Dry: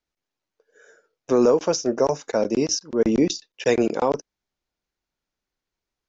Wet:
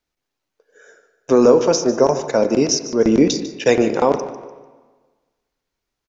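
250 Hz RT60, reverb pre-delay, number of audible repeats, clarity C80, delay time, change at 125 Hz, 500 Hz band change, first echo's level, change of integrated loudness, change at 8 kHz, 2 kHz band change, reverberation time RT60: 1.4 s, 4 ms, 3, 11.0 dB, 0.148 s, +5.5 dB, +5.5 dB, -15.5 dB, +5.5 dB, n/a, +5.5 dB, 1.4 s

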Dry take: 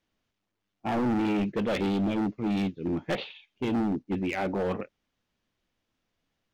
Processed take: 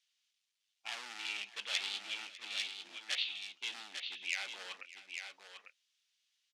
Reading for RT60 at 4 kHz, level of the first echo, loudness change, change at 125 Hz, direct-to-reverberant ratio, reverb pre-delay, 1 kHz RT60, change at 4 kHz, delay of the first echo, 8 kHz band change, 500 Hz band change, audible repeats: none, -18.5 dB, -10.5 dB, under -40 dB, none, none, none, +6.0 dB, 0.599 s, n/a, -28.5 dB, 2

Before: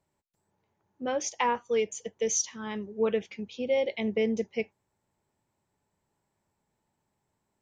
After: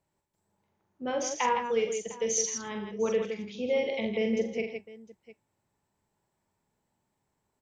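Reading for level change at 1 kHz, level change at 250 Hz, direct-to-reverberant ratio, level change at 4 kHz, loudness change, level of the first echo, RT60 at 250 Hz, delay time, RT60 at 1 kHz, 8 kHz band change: +0.5 dB, -0.5 dB, none, +0.5 dB, 0.0 dB, -5.0 dB, none, 44 ms, none, 0.0 dB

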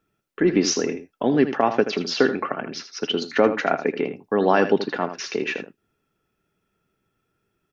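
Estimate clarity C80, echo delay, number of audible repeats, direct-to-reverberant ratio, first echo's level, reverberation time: none, 80 ms, 1, none, -11.0 dB, none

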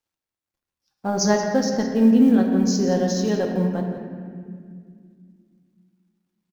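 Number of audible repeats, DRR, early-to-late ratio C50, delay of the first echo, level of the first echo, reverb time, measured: 1, 0.5 dB, 3.0 dB, 0.173 s, -12.5 dB, 2.1 s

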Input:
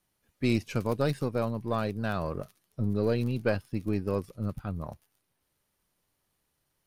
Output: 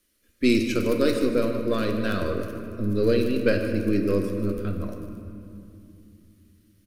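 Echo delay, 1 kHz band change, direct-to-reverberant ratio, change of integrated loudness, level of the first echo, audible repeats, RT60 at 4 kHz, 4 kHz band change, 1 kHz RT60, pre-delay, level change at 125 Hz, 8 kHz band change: 0.153 s, +0.5 dB, 3.0 dB, +6.0 dB, -13.0 dB, 1, 1.6 s, +8.5 dB, 2.5 s, 4 ms, +0.5 dB, n/a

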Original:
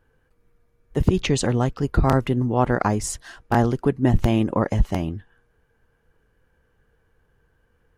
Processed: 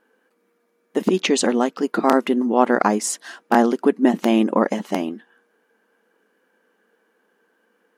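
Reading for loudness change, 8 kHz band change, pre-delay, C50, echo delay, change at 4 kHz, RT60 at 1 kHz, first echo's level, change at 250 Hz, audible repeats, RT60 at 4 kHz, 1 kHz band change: +2.5 dB, +4.5 dB, none, none, none, +4.5 dB, none, none, +4.0 dB, none, none, +4.5 dB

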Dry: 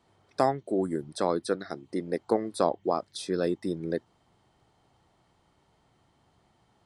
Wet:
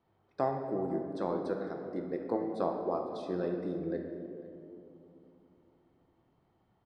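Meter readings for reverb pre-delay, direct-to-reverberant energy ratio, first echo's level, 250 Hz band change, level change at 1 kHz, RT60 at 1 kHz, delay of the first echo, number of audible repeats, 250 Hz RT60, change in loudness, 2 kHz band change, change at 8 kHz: 6 ms, 2.0 dB, -20.0 dB, -4.0 dB, -6.0 dB, 2.2 s, 0.501 s, 1, 3.8 s, -5.0 dB, -8.5 dB, under -20 dB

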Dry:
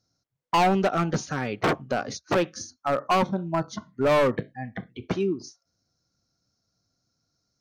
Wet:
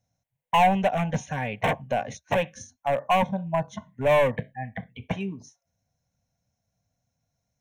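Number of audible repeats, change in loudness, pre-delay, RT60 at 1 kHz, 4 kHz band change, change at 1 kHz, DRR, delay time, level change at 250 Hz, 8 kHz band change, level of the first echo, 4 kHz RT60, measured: none, 0.0 dB, none, none, -1.5 dB, +1.0 dB, none, none, -3.0 dB, -4.5 dB, none, none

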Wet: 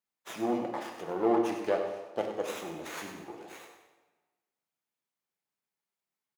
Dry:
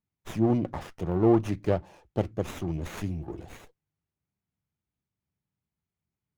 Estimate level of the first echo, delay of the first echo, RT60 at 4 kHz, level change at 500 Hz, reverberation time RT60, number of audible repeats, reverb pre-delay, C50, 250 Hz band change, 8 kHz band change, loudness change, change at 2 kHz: -10.0 dB, 99 ms, 1.0 s, -2.0 dB, 1.2 s, 1, 3 ms, 4.5 dB, -6.5 dB, +2.0 dB, -4.0 dB, +2.5 dB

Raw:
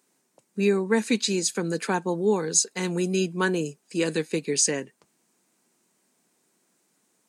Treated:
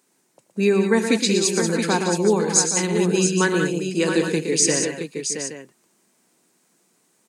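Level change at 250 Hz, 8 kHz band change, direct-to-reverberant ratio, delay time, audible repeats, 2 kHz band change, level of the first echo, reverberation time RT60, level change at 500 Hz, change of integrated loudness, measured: +5.5 dB, +5.5 dB, none, 83 ms, 5, +5.5 dB, -18.5 dB, none, +5.5 dB, +5.0 dB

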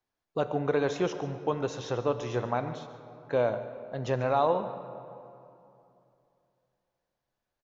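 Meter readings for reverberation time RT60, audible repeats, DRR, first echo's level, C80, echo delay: 2.8 s, 1, 9.5 dB, -16.5 dB, 11.0 dB, 0.143 s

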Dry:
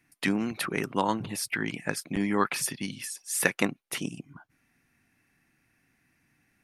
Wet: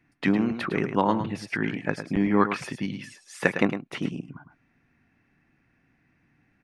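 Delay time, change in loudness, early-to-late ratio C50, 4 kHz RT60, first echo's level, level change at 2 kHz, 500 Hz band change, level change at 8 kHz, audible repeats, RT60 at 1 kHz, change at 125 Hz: 0.107 s, +3.0 dB, none, none, -9.5 dB, +1.0 dB, +5.0 dB, -15.0 dB, 1, none, +5.5 dB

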